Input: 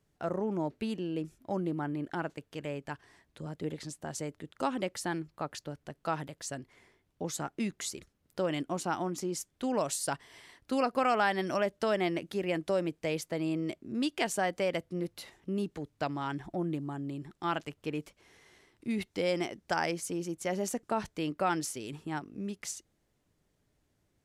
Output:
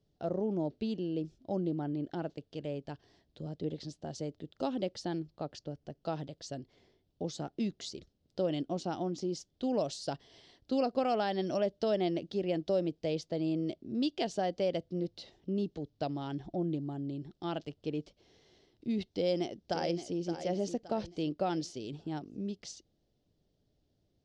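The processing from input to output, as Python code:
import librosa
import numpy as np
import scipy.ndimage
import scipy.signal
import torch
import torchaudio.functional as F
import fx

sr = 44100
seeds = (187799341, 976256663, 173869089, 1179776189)

y = fx.peak_eq(x, sr, hz=3800.0, db=-6.5, octaves=0.48, at=(5.54, 6.02))
y = fx.echo_throw(y, sr, start_s=19.07, length_s=1.11, ms=570, feedback_pct=40, wet_db=-10.0)
y = scipy.signal.sosfilt(scipy.signal.cheby1(3, 1.0, 5100.0, 'lowpass', fs=sr, output='sos'), y)
y = fx.band_shelf(y, sr, hz=1500.0, db=-11.5, octaves=1.7)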